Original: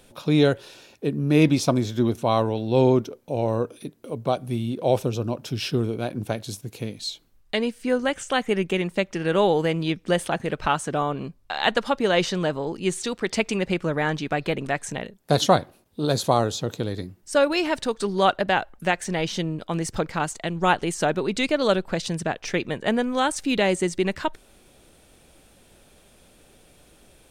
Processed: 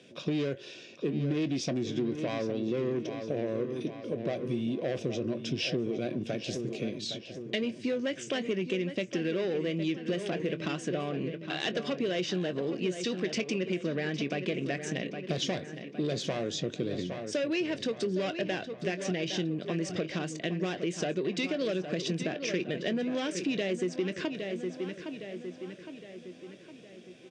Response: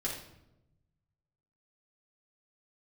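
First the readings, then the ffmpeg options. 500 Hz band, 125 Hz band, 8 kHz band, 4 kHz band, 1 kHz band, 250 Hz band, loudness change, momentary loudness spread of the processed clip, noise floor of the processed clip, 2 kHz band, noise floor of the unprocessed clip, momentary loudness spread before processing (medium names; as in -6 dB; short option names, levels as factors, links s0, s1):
-8.0 dB, -9.0 dB, -9.0 dB, -7.0 dB, -17.5 dB, -6.5 dB, -8.5 dB, 6 LU, -49 dBFS, -9.0 dB, -56 dBFS, 10 LU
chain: -filter_complex "[0:a]asoftclip=type=tanh:threshold=0.1,highpass=f=130:w=0.5412,highpass=f=130:w=1.3066,equalizer=f=350:t=q:w=4:g=4,equalizer=f=860:t=q:w=4:g=-4,equalizer=f=1300:t=q:w=4:g=-10,equalizer=f=2600:t=q:w=4:g=3,lowpass=f=6100:w=0.5412,lowpass=f=6100:w=1.3066,bandreject=f=4200:w=10,asplit=2[s0][s1];[s1]adelay=22,volume=0.2[s2];[s0][s2]amix=inputs=2:normalize=0,asplit=2[s3][s4];[s4]adelay=812,lowpass=f=4400:p=1,volume=0.282,asplit=2[s5][s6];[s6]adelay=812,lowpass=f=4400:p=1,volume=0.53,asplit=2[s7][s8];[s8]adelay=812,lowpass=f=4400:p=1,volume=0.53,asplit=2[s9][s10];[s10]adelay=812,lowpass=f=4400:p=1,volume=0.53,asplit=2[s11][s12];[s12]adelay=812,lowpass=f=4400:p=1,volume=0.53,asplit=2[s13][s14];[s14]adelay=812,lowpass=f=4400:p=1,volume=0.53[s15];[s3][s5][s7][s9][s11][s13][s15]amix=inputs=7:normalize=0,acompressor=threshold=0.0447:ratio=6,equalizer=f=870:w=4.4:g=-13"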